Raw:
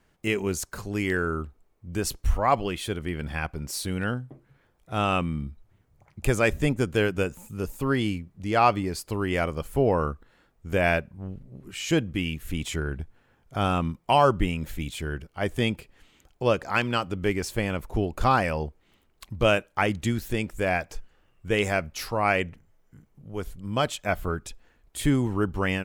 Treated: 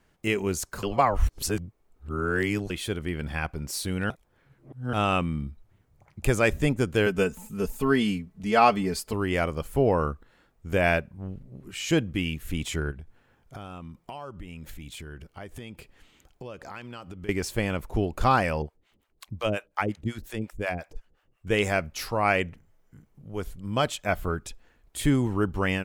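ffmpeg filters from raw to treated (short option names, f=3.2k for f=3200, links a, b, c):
-filter_complex "[0:a]asettb=1/sr,asplit=3[a][b][c];[a]atrim=end=7.064[d];[b]atrim=start=7.06:end=9.13,asetpts=PTS-STARTPTS,afade=t=in:d=0.004:c=qsin,afade=t=out:st=2.066:d=0.004:c=qsin,aecho=1:1:4.6:0.76,atrim=end_sample=91287[e];[c]atrim=start=9.126[f];[d][e]acrossfade=d=0.004:c1=hsin:c2=qsin[g];[g][f]acrossfade=d=0.004:c1=qsin:c2=hsin,asettb=1/sr,asplit=3[h][i][j];[h]atrim=end=12.914[k];[i]atrim=start=12.91:end=17.29,asetpts=PTS-STARTPTS,afade=t=in:d=0.004:c=qsin,afade=t=out:st=4.376:d=0.004:c=qsin,acompressor=threshold=-37dB:ratio=6:attack=3.2:release=140:knee=1:detection=peak[l];[j]atrim=start=17.286[m];[k][l]acrossfade=d=0.004:c1=hsin:c2=qsin[n];[n][m]acrossfade=d=0.004:c1=qsin:c2=hsin,asettb=1/sr,asplit=3[o][p][q];[o]atrim=end=18.624[r];[p]atrim=start=18.62:end=21.47,asetpts=PTS-STARTPTS,afade=t=in:d=0.004:c=qsin,afade=t=out:st=2.846:d=0.004:c=qsin,acrossover=split=560[s][t];[s]aeval=exprs='val(0)*(1-1/2+1/2*cos(2*PI*5.6*n/s))':c=same[u];[t]aeval=exprs='val(0)*(1-1/2-1/2*cos(2*PI*5.6*n/s))':c=same[v];[u][v]amix=inputs=2:normalize=0[w];[q]atrim=start=21.466[x];[r][w]acrossfade=d=0.004:c1=hsin:c2=qsin[y];[y][x]acrossfade=d=0.004:c1=qsin:c2=hsin,asplit=5[z][aa][ab][ac][ad];[z]atrim=end=0.832[ae];[aa]atrim=start=0.828:end=2.702,asetpts=PTS-STARTPTS,areverse[af];[ab]atrim=start=2.698:end=4.102[ag];[ac]atrim=start=4.098:end=4.932,asetpts=PTS-STARTPTS,areverse[ah];[ad]atrim=start=4.928[ai];[ae][af]acrossfade=d=0.004:c1=hsin:c2=hsin[aj];[aj][ag]acrossfade=d=0.004:c1=hsin:c2=hsin[ak];[ak][ah]acrossfade=d=0.004:c1=hsin:c2=hsin[al];[al][ai]acrossfade=d=0.004:c1=hsin:c2=hsin"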